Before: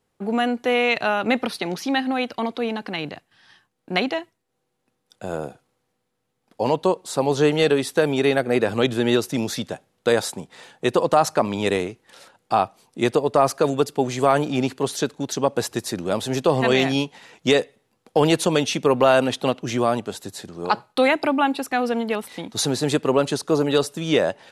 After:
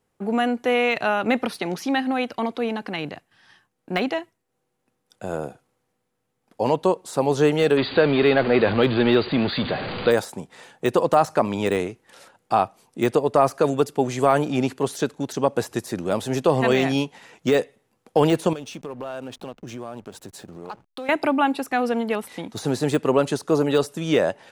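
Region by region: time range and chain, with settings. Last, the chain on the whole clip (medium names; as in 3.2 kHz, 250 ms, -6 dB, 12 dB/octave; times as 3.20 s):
7.77–10.11 s: jump at every zero crossing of -23.5 dBFS + brick-wall FIR low-pass 4.8 kHz + treble shelf 2.1 kHz +4 dB
18.53–21.09 s: band-stop 2 kHz, Q 6.3 + compression 3:1, threshold -35 dBFS + hysteresis with a dead band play -43.5 dBFS
whole clip: de-esser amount 60%; peaking EQ 4 kHz -4 dB 0.89 oct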